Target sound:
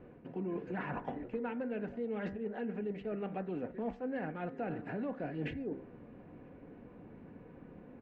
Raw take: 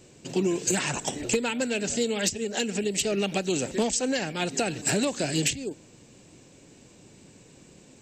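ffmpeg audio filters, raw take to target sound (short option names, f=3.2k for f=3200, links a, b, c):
-filter_complex "[0:a]lowpass=f=1.7k:w=0.5412,lowpass=f=1.7k:w=1.3066,aecho=1:1:4.1:0.31,bandreject=f=65.77:t=h:w=4,bandreject=f=131.54:t=h:w=4,bandreject=f=197.31:t=h:w=4,bandreject=f=263.08:t=h:w=4,bandreject=f=328.85:t=h:w=4,bandreject=f=394.62:t=h:w=4,bandreject=f=460.39:t=h:w=4,bandreject=f=526.16:t=h:w=4,bandreject=f=591.93:t=h:w=4,bandreject=f=657.7:t=h:w=4,bandreject=f=723.47:t=h:w=4,bandreject=f=789.24:t=h:w=4,bandreject=f=855.01:t=h:w=4,bandreject=f=920.78:t=h:w=4,bandreject=f=986.55:t=h:w=4,bandreject=f=1.05232k:t=h:w=4,bandreject=f=1.11809k:t=h:w=4,bandreject=f=1.18386k:t=h:w=4,bandreject=f=1.24963k:t=h:w=4,bandreject=f=1.3154k:t=h:w=4,bandreject=f=1.38117k:t=h:w=4,bandreject=f=1.44694k:t=h:w=4,bandreject=f=1.51271k:t=h:w=4,bandreject=f=1.57848k:t=h:w=4,bandreject=f=1.64425k:t=h:w=4,bandreject=f=1.71002k:t=h:w=4,bandreject=f=1.77579k:t=h:w=4,bandreject=f=1.84156k:t=h:w=4,bandreject=f=1.90733k:t=h:w=4,bandreject=f=1.9731k:t=h:w=4,bandreject=f=2.03887k:t=h:w=4,bandreject=f=2.10464k:t=h:w=4,areverse,acompressor=threshold=-37dB:ratio=6,areverse,asplit=2[a][b];[b]adelay=991.3,volume=-27dB,highshelf=f=4k:g=-22.3[c];[a][c]amix=inputs=2:normalize=0,volume=1dB"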